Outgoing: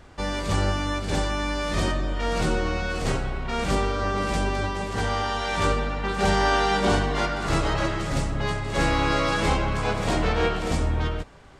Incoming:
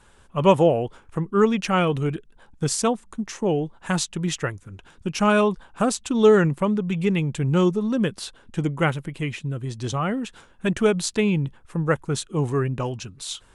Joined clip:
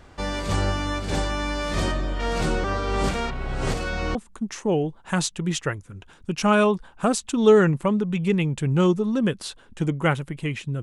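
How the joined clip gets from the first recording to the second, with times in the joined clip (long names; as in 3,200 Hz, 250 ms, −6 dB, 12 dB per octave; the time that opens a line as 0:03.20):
outgoing
0:02.64–0:04.15: reverse
0:04.15: continue with incoming from 0:02.92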